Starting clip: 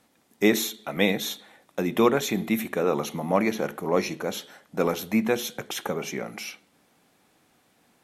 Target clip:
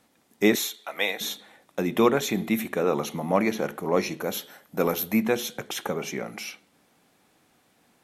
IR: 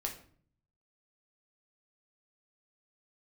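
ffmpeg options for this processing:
-filter_complex "[0:a]asettb=1/sr,asplit=3[link_01][link_02][link_03];[link_01]atrim=end=0.554[link_04];[link_02]atrim=start=0.55:end=1.21,asetpts=PTS-STARTPTS,afade=type=in:duration=0.004:curve=qsin,afade=type=out:start_time=0.656:duration=0.004:curve=qsin,highpass=670[link_05];[link_03]atrim=start=1.206[link_06];[link_04][link_05]acrossfade=duration=0.004:curve1=hsin:curve2=qsin[link_07];[link_07][link_06]acrossfade=duration=0.004:curve1=qsin:curve2=hsin,asettb=1/sr,asplit=3[link_08][link_09][link_10];[link_08]atrim=end=4.204[link_11];[link_09]atrim=start=4.2:end=5.23,asetpts=PTS-STARTPTS,afade=type=in:duration=0.004:curve=qsin,afade=type=out:start_time=1.026:duration=0.004:curve=qsin,equalizer=frequency=13000:width_type=o:width=0.35:gain=13.5[link_12];[link_10]atrim=start=5.226[link_13];[link_11][link_12]acrossfade=duration=0.004:curve1=hsin:curve2=qsin[link_14];[link_14][link_13]acrossfade=duration=0.004:curve1=qsin:curve2=hsin"

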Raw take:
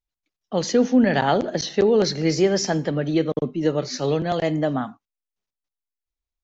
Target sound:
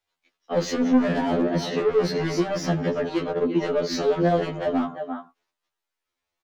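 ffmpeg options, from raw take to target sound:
ffmpeg -i in.wav -filter_complex "[0:a]asettb=1/sr,asplit=3[link_01][link_02][link_03];[link_01]atrim=end=0.844[link_04];[link_02]atrim=start=0.84:end=3.08,asetpts=PTS-STARTPTS,afade=type=in:duration=0.004:curve=qsin,afade=type=out:start_time=2.236:duration=0.004:curve=qsin,bass=frequency=250:gain=8,treble=frequency=4000:gain=-5[link_05];[link_03]atrim=start=3.076[link_06];[link_04][link_05]acrossfade=duration=0.004:curve1=hsin:curve2=qsin[link_07];[link_07][link_06]acrossfade=duration=0.004:curve1=qsin:curve2=hsin,asplit=2[link_08][link_09];[link_09]adelay=344,volume=-18dB,highshelf=frequency=4000:gain=-7.74[link_10];[link_08][link_10]amix=inputs=2:normalize=0,asplit=2[link_11][link_12];[link_12]highpass=frequency=720:poles=1,volume=26dB,asoftclip=type=tanh:threshold=-4.5dB[link_13];[link_11][link_13]amix=inputs=2:normalize=0,lowpass=frequency=1900:poles=1,volume=-6dB,acrossover=split=120|470[link_14][link_15][link_16];[link_14]acompressor=threshold=-41dB:ratio=4[link_17];[link_15]acompressor=threshold=-20dB:ratio=4[link_18];[link_16]acompressor=threshold=-28dB:ratio=4[link_19];[link_17][link_18][link_19]amix=inputs=3:normalize=0,afftfilt=real='re*2*eq(mod(b,4),0)':imag='im*2*eq(mod(b,4),0)':win_size=2048:overlap=0.75" out.wav

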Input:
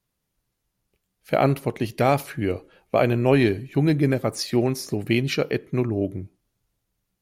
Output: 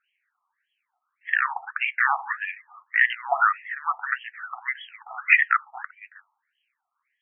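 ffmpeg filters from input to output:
ffmpeg -i in.wav -filter_complex "[0:a]afftfilt=real='re*pow(10,14/40*sin(2*PI*(1*log(max(b,1)*sr/1024/100)/log(2)-(-2.9)*(pts-256)/sr)))':imag='im*pow(10,14/40*sin(2*PI*(1*log(max(b,1)*sr/1024/100)/log(2)-(-2.9)*(pts-256)/sr)))':win_size=1024:overlap=0.75,afreqshift=-450,asplit=2[link_01][link_02];[link_02]acontrast=88,volume=1.5dB[link_03];[link_01][link_03]amix=inputs=2:normalize=0,afftfilt=real='re*between(b*sr/1024,930*pow(2400/930,0.5+0.5*sin(2*PI*1.7*pts/sr))/1.41,930*pow(2400/930,0.5+0.5*sin(2*PI*1.7*pts/sr))*1.41)':imag='im*between(b*sr/1024,930*pow(2400/930,0.5+0.5*sin(2*PI*1.7*pts/sr))/1.41,930*pow(2400/930,0.5+0.5*sin(2*PI*1.7*pts/sr))*1.41)':win_size=1024:overlap=0.75,volume=1dB" out.wav

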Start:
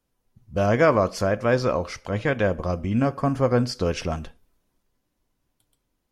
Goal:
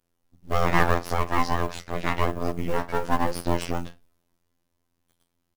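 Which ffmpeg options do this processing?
ffmpeg -i in.wav -filter_complex "[0:a]asplit=2[link_01][link_02];[link_02]adelay=38,volume=-12.5dB[link_03];[link_01][link_03]amix=inputs=2:normalize=0,atempo=1.1,afftfilt=real='hypot(re,im)*cos(PI*b)':imag='0':win_size=2048:overlap=0.75,aeval=exprs='abs(val(0))':channel_layout=same,acrusher=bits=7:mode=log:mix=0:aa=0.000001,volume=2.5dB" out.wav

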